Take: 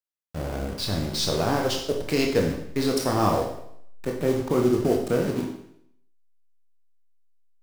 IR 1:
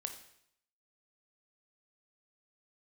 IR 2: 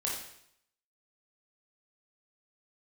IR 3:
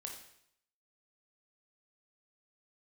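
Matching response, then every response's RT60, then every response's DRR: 3; 0.70 s, 0.70 s, 0.70 s; 5.5 dB, -4.0 dB, 1.0 dB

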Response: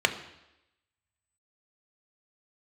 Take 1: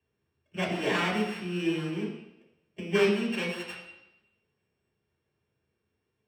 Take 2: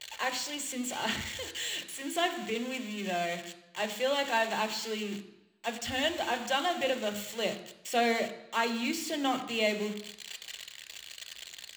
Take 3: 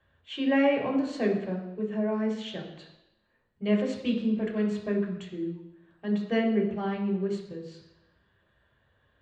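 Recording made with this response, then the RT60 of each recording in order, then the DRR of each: 2; 0.90 s, 0.90 s, 0.90 s; -7.0 dB, 6.0 dB, -2.5 dB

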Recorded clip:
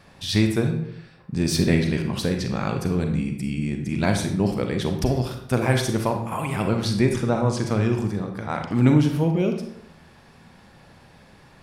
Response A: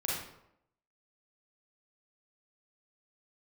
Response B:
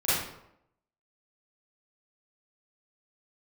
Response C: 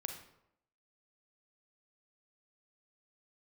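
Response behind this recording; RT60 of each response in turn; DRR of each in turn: C; 0.80 s, 0.80 s, 0.80 s; -5.5 dB, -13.5 dB, 4.5 dB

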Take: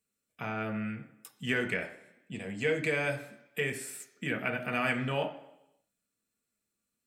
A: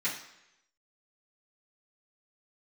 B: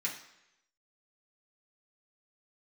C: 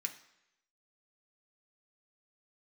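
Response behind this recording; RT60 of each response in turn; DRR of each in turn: C; 0.85 s, 0.85 s, 0.85 s; -12.0 dB, -5.5 dB, 3.0 dB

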